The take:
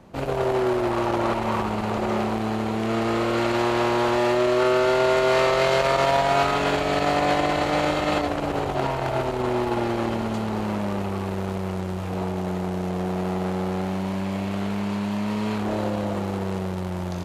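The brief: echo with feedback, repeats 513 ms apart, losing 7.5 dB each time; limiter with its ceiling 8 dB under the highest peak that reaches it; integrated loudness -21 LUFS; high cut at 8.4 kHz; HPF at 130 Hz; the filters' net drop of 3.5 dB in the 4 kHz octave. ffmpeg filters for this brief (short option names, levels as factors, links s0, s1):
-af "highpass=130,lowpass=8400,equalizer=f=4000:t=o:g=-4.5,alimiter=limit=0.158:level=0:latency=1,aecho=1:1:513|1026|1539|2052|2565:0.422|0.177|0.0744|0.0312|0.0131,volume=1.68"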